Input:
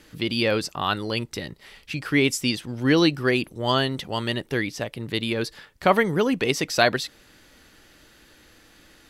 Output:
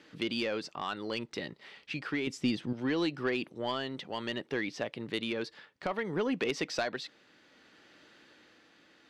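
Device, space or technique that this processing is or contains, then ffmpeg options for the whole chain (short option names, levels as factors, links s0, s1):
AM radio: -filter_complex "[0:a]highpass=190,lowpass=4400,acompressor=threshold=0.0794:ratio=6,asoftclip=type=tanh:threshold=0.15,tremolo=f=0.62:d=0.34,asettb=1/sr,asplit=3[s0][s1][s2];[s0]atrim=end=2.274[s3];[s1]atrim=start=2.27:end=2.73,asetpts=PTS-STARTPTS,afade=t=in:d=0.004:c=qsin,afade=t=out:st=0.456:d=0.004:c=qsin,lowshelf=f=360:g=12[s4];[s2]atrim=start=2.726[s5];[s3][s4]acrossfade=d=0.004:c1=hsin:c2=qsin[s6];[s6][s5]acrossfade=d=0.004:c1=qsin:c2=hsin,volume=0.668"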